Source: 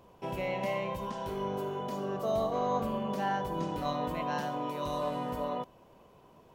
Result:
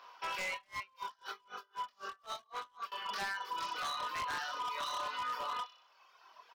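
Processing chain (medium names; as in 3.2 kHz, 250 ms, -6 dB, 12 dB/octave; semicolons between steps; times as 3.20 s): resonant high-pass 1.3 kHz, resonance Q 2.4; resonant high shelf 6.6 kHz -9.5 dB, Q 3; doubling 25 ms -2.5 dB; reverb removal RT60 1.5 s; feedback echo behind a high-pass 61 ms, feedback 53%, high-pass 3.8 kHz, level -5 dB; compression 12:1, threshold -37 dBFS, peak gain reduction 10.5 dB; wavefolder -36.5 dBFS; 0.53–2.92 s: logarithmic tremolo 3.9 Hz, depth 35 dB; trim +4.5 dB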